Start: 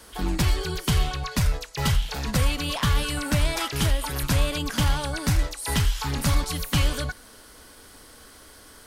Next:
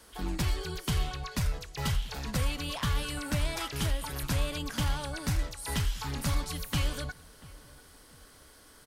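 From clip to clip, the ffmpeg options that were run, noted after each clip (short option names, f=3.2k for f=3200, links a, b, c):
-filter_complex "[0:a]asplit=2[a][b];[b]adelay=689,lowpass=f=2k:p=1,volume=-21dB,asplit=2[c][d];[d]adelay=689,lowpass=f=2k:p=1,volume=0.37,asplit=2[e][f];[f]adelay=689,lowpass=f=2k:p=1,volume=0.37[g];[a][c][e][g]amix=inputs=4:normalize=0,volume=-7.5dB"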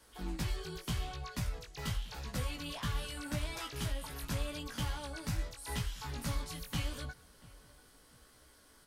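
-af "flanger=delay=16:depth=2.8:speed=0.84,volume=-3.5dB"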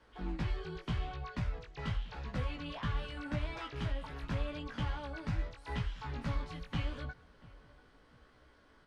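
-af "lowpass=2.6k,volume=1dB"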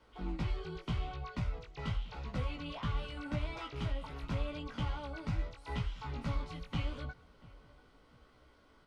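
-af "bandreject=f=1.7k:w=5.5"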